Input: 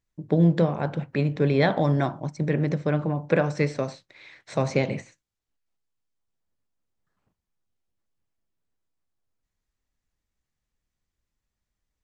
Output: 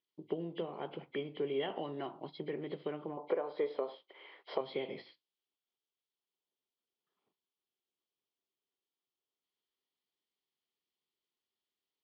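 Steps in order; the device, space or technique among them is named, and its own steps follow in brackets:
0:03.17–0:04.61: octave-band graphic EQ 125/500/1,000/4,000 Hz −11/+9/+8/−6 dB
hearing aid with frequency lowering (hearing-aid frequency compression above 2,000 Hz 1.5 to 1; downward compressor 3 to 1, threshold −28 dBFS, peak gain reduction 15 dB; loudspeaker in its box 340–5,600 Hz, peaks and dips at 390 Hz +8 dB, 580 Hz −5 dB, 1,600 Hz −9 dB, 3,200 Hz +10 dB)
level −6 dB

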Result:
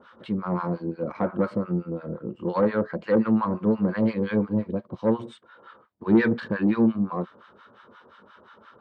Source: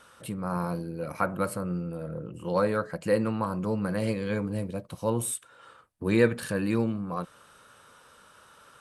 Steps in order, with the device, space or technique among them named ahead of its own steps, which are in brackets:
guitar amplifier with harmonic tremolo (two-band tremolo in antiphase 5.7 Hz, depth 100%, crossover 860 Hz; soft clipping −23.5 dBFS, distortion −14 dB; loudspeaker in its box 95–3,500 Hz, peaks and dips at 140 Hz −7 dB, 220 Hz +8 dB, 370 Hz +7 dB, 1,000 Hz +3 dB, 2,600 Hz −8 dB)
level +7.5 dB

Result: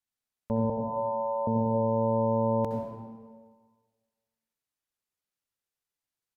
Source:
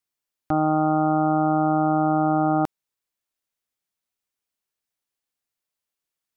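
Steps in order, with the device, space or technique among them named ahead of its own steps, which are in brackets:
0:00.69–0:01.47: Butterworth high-pass 770 Hz 72 dB per octave
monster voice (pitch shifter −5.5 semitones; low-shelf EQ 160 Hz +4.5 dB; convolution reverb RT60 1.6 s, pre-delay 60 ms, DRR 1 dB)
level −7.5 dB

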